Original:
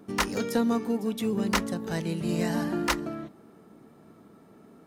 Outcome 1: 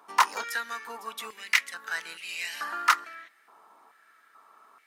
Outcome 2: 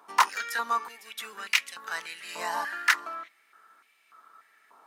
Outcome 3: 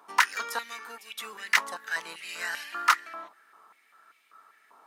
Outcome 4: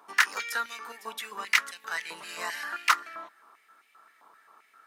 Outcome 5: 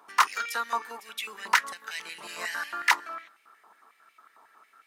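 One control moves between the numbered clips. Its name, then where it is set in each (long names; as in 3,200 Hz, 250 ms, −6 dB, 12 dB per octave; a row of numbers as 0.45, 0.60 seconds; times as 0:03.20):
high-pass on a step sequencer, speed: 2.3, 3.4, 5.1, 7.6, 11 Hertz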